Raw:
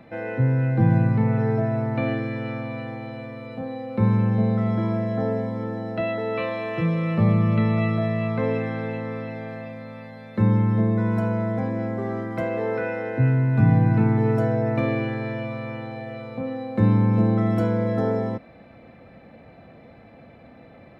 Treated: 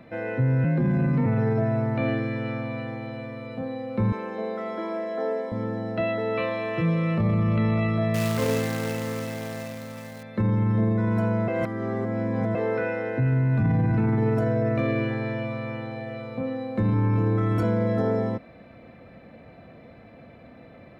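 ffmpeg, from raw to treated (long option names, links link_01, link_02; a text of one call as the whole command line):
ffmpeg -i in.wav -filter_complex "[0:a]asettb=1/sr,asplit=3[link_01][link_02][link_03];[link_01]atrim=end=0.644[link_04];[link_02]atrim=start=0.64:end=1.26,asetpts=PTS-STARTPTS,afade=type=in:duration=0.004:curve=qsin,afade=type=out:start_time=0.616:duration=0.004:curve=qsin,afreqshift=28[link_05];[link_03]atrim=start=1.256[link_06];[link_04][link_05]acrossfade=duration=0.004:curve1=hsin:curve2=qsin[link_07];[link_07][link_06]acrossfade=duration=0.004:curve1=qsin:curve2=hsin,asettb=1/sr,asplit=3[link_08][link_09][link_10];[link_08]atrim=end=4.124[link_11];[link_09]atrim=start=4.12:end=5.52,asetpts=PTS-STARTPTS,afade=type=in:duration=0.004:curve=qsin,afade=type=out:start_time=1.396:duration=0.004:curve=qsin,highpass=frequency=330:width=0.5412,highpass=frequency=330:width=1.3066[link_12];[link_10]atrim=start=5.516[link_13];[link_11][link_12]acrossfade=duration=0.004:curve1=hsin:curve2=qsin[link_14];[link_14][link_13]acrossfade=duration=0.004:curve1=qsin:curve2=hsin,asettb=1/sr,asplit=3[link_15][link_16][link_17];[link_15]atrim=end=8.144[link_18];[link_16]atrim=start=8.14:end=10.23,asetpts=PTS-STARTPTS,afade=type=in:duration=0.004:curve=qsin,afade=type=out:start_time=2.086:duration=0.004:curve=qsin,acrusher=bits=2:mode=log:mix=0:aa=0.000001[link_19];[link_17]atrim=start=10.226[link_20];[link_18][link_19]acrossfade=duration=0.004:curve1=hsin:curve2=qsin[link_21];[link_21][link_20]acrossfade=duration=0.004:curve1=qsin:curve2=hsin,asettb=1/sr,asplit=3[link_22][link_23][link_24];[link_22]atrim=end=14.404[link_25];[link_23]atrim=start=14.4:end=15.11,asetpts=PTS-STARTPTS,afade=type=in:duration=0.004:curve=qsin,afade=type=out:start_time=0.706:duration=0.004:curve=qsin,asuperstop=centerf=840:order=8:qfactor=6[link_26];[link_24]atrim=start=15.106[link_27];[link_25][link_26]acrossfade=duration=0.004:curve1=hsin:curve2=qsin[link_28];[link_28][link_27]acrossfade=duration=0.004:curve1=qsin:curve2=hsin,asettb=1/sr,asplit=3[link_29][link_30][link_31];[link_29]atrim=end=16.934[link_32];[link_30]atrim=start=16.93:end=17.63,asetpts=PTS-STARTPTS,afade=type=in:duration=0.004:curve=qsin,afade=type=out:start_time=0.696:duration=0.004:curve=qsin,aecho=1:1:6.9:0.77,atrim=end_sample=30870[link_33];[link_31]atrim=start=17.626[link_34];[link_32][link_33]acrossfade=duration=0.004:curve1=hsin:curve2=qsin[link_35];[link_35][link_34]acrossfade=duration=0.004:curve1=qsin:curve2=hsin,asplit=3[link_36][link_37][link_38];[link_36]atrim=end=11.482[link_39];[link_37]atrim=start=11.478:end=12.552,asetpts=PTS-STARTPTS,areverse[link_40];[link_38]atrim=start=12.548[link_41];[link_39][link_40]acrossfade=duration=0.004:curve1=hsin:curve2=hsin[link_42];[link_42][link_41]acrossfade=duration=0.004:curve1=hsin:curve2=hsin,alimiter=limit=-16dB:level=0:latency=1:release=11,bandreject=frequency=820:width=12" out.wav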